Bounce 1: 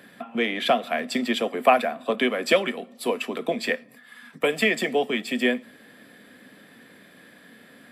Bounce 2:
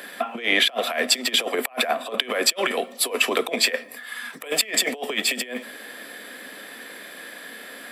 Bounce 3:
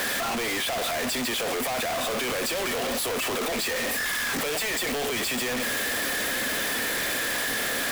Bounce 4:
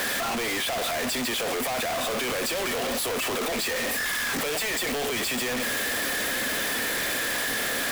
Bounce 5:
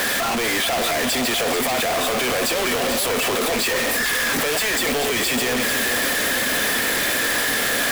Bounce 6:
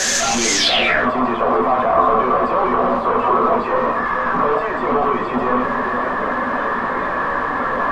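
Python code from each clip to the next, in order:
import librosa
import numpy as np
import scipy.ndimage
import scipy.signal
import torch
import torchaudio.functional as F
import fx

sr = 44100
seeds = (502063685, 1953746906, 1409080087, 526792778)

y1 = fx.over_compress(x, sr, threshold_db=-29.0, ratio=-0.5)
y1 = scipy.signal.sosfilt(scipy.signal.butter(2, 420.0, 'highpass', fs=sr, output='sos'), y1)
y1 = fx.high_shelf(y1, sr, hz=4700.0, db=5.5)
y1 = F.gain(torch.from_numpy(y1), 6.5).numpy()
y2 = np.sign(y1) * np.sqrt(np.mean(np.square(y1)))
y2 = F.gain(torch.from_numpy(y2), -1.5).numpy()
y3 = y2
y4 = y3 + 10.0 ** (-8.0 / 20.0) * np.pad(y3, (int(438 * sr / 1000.0), 0))[:len(y3)]
y4 = F.gain(torch.from_numpy(y4), 6.0).numpy()
y5 = fx.spec_quant(y4, sr, step_db=15)
y5 = fx.filter_sweep_lowpass(y5, sr, from_hz=6500.0, to_hz=1100.0, start_s=0.54, end_s=1.09, q=6.3)
y5 = fx.room_shoebox(y5, sr, seeds[0], volume_m3=200.0, walls='furnished', distance_m=1.1)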